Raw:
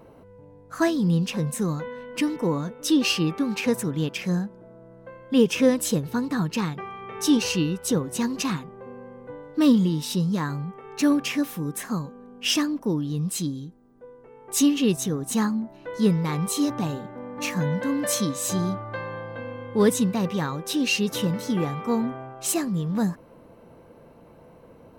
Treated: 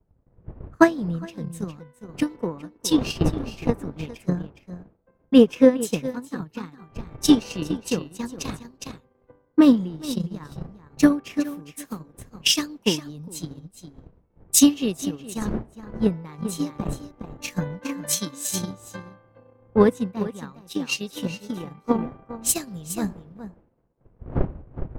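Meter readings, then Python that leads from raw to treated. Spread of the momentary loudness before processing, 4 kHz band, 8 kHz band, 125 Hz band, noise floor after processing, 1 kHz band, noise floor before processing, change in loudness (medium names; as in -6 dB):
13 LU, +0.5 dB, +2.0 dB, -4.0 dB, -63 dBFS, -0.5 dB, -50 dBFS, +1.0 dB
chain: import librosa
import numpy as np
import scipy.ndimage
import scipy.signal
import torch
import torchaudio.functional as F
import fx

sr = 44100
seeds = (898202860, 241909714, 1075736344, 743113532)

y = fx.dmg_wind(x, sr, seeds[0], corner_hz=380.0, level_db=-35.0)
y = y + 10.0 ** (-5.5 / 20.0) * np.pad(y, (int(412 * sr / 1000.0), 0))[:len(y)]
y = fx.transient(y, sr, attack_db=11, sustain_db=-7)
y = fx.rider(y, sr, range_db=4, speed_s=2.0)
y = fx.band_widen(y, sr, depth_pct=100)
y = y * librosa.db_to_amplitude(-9.5)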